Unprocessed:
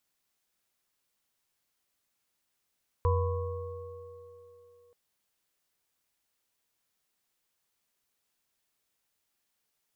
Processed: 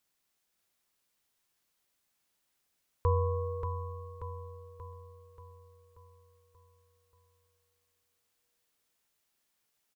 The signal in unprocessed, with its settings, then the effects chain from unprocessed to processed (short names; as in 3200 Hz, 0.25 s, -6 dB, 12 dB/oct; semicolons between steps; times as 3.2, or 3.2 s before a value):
sine partials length 1.88 s, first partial 88.1 Hz, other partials 481/1000/1100 Hz, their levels -5/-7/-14 dB, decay 2.11 s, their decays 3.62/1.11/2.94 s, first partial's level -23 dB
feedback echo 0.583 s, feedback 53%, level -6.5 dB